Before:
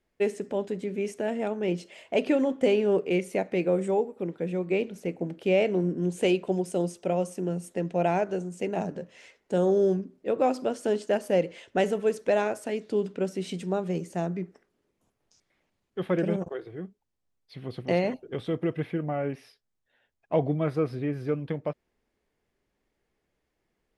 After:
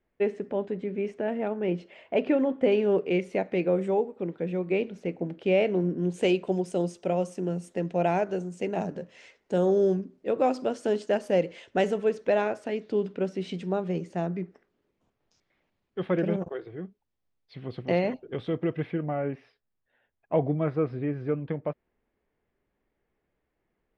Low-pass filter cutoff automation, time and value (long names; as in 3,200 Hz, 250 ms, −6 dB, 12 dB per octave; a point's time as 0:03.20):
2,500 Hz
from 0:02.72 4,200 Hz
from 0:06.14 6,900 Hz
from 0:12.04 4,200 Hz
from 0:19.14 2,400 Hz